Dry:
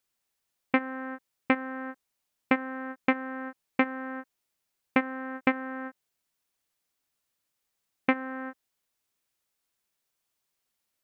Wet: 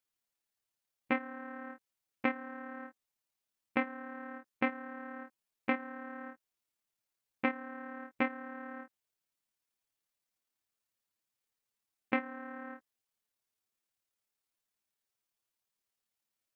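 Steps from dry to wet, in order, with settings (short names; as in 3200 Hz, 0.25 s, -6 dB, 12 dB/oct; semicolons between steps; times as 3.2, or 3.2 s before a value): granular stretch 1.5×, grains 55 ms; gain -6.5 dB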